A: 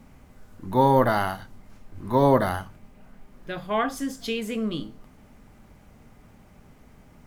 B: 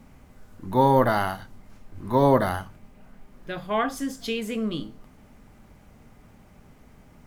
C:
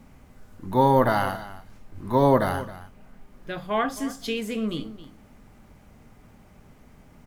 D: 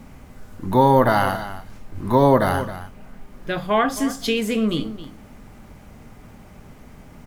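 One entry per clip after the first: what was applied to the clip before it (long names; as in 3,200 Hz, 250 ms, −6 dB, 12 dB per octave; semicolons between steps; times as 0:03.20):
no processing that can be heard
single-tap delay 268 ms −16 dB
downward compressor 1.5 to 1, threshold −26 dBFS, peak gain reduction 5 dB; level +8 dB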